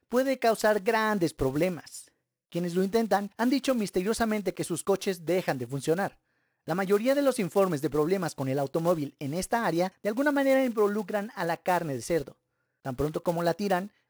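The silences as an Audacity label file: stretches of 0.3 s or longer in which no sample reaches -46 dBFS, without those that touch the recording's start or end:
2.080000	2.520000	silence
6.100000	6.670000	silence
12.320000	12.850000	silence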